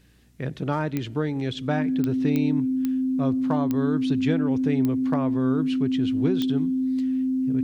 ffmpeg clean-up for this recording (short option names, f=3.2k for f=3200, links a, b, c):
-af "adeclick=t=4,bandreject=f=60.2:t=h:w=4,bandreject=f=120.4:t=h:w=4,bandreject=f=180.6:t=h:w=4,bandreject=f=240.8:t=h:w=4,bandreject=f=301:t=h:w=4,bandreject=f=260:w=30"